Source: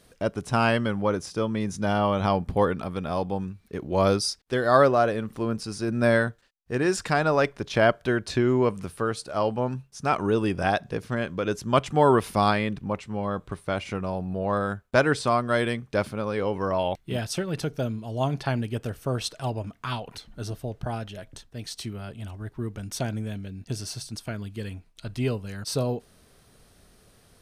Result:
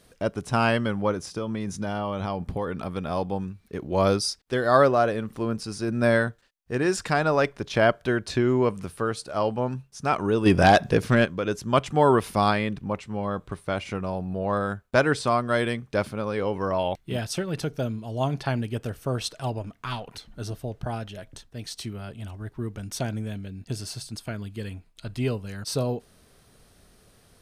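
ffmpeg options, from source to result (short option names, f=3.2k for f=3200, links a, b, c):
-filter_complex "[0:a]asettb=1/sr,asplit=3[a][b][c];[a]atrim=end=1.114[d];[b]atrim=start=1.11:end=2.81,asetpts=PTS-STARTPTS,afade=t=in:d=0.004:c=qsin,afade=t=out:st=1.696:d=0.004:c=qsin,acompressor=threshold=-24dB:ratio=6:attack=3.2:release=140:knee=1:detection=peak[e];[c]atrim=start=2.806[f];[d][e]acrossfade=d=0.004:c1=hsin:c2=qsin[g];[g][f]acrossfade=d=0.004:c1=qsin:c2=hsin,asplit=3[h][i][j];[h]afade=t=out:st=10.45:d=0.02[k];[i]aeval=exprs='0.335*sin(PI/2*2*val(0)/0.335)':c=same,afade=t=in:st=10.45:d=0.02,afade=t=out:st=11.24:d=0.02[l];[j]afade=t=in:st=11.24:d=0.02[m];[k][l][m]amix=inputs=3:normalize=0,asettb=1/sr,asplit=3[n][o][p];[n]atrim=end=19.584[q];[o]atrim=start=19.58:end=20.15,asetpts=PTS-STARTPTS,afade=t=in:d=0.004:c=qsin,afade=t=out:st=0.566:d=0.004:c=qsin,aeval=exprs='if(lt(val(0),0),0.708*val(0),val(0))':c=same[r];[p]atrim=start=20.146[s];[q][r]acrossfade=d=0.004:c1=hsin:c2=qsin[t];[t][s]acrossfade=d=0.004:c1=qsin:c2=hsin,asettb=1/sr,asplit=3[u][v][w];[u]atrim=end=23.324[x];[v]atrim=start=23.32:end=25.19,asetpts=PTS-STARTPTS,afade=t=in:d=0.004:c=qsin,afade=t=out:st=1.866:d=0.004:c=qsin,bandreject=f=5.8k:w=12[y];[w]atrim=start=25.186[z];[x][y]acrossfade=d=0.004:c1=hsin:c2=qsin[aa];[aa][z]acrossfade=d=0.004:c1=qsin:c2=hsin"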